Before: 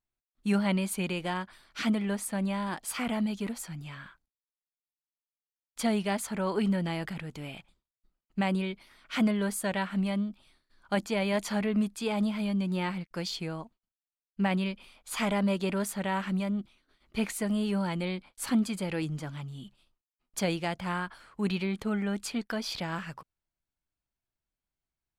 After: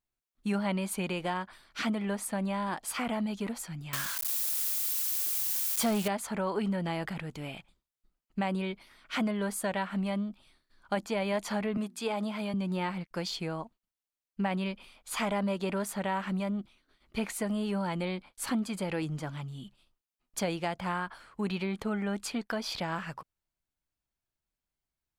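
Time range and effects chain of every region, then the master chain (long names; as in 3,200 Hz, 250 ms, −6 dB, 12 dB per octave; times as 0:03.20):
0:03.93–0:06.08: spike at every zero crossing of −25 dBFS + leveller curve on the samples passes 2
0:11.77–0:12.54: high-pass filter 230 Hz + downward expander −53 dBFS + mains-hum notches 60/120/180/240/300/360 Hz
whole clip: dynamic equaliser 820 Hz, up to +5 dB, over −45 dBFS, Q 0.72; downward compressor 2 to 1, threshold −31 dBFS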